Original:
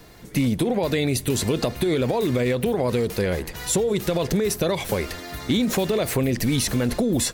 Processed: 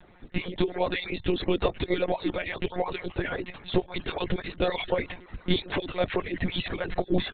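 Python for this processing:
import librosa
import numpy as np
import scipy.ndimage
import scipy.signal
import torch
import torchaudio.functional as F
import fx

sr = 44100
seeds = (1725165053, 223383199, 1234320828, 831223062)

y = fx.hpss_only(x, sr, part='percussive')
y = fx.lpc_monotone(y, sr, seeds[0], pitch_hz=180.0, order=16)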